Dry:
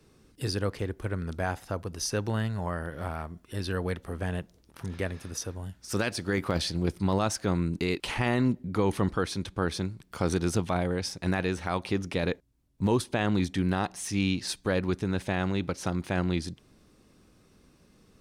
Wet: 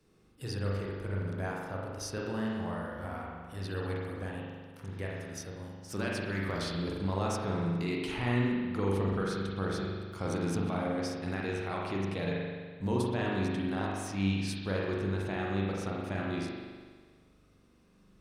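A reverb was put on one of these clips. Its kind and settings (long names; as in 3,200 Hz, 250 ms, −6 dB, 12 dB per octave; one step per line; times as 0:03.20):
spring reverb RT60 1.6 s, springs 41 ms, chirp 25 ms, DRR −3.5 dB
level −9 dB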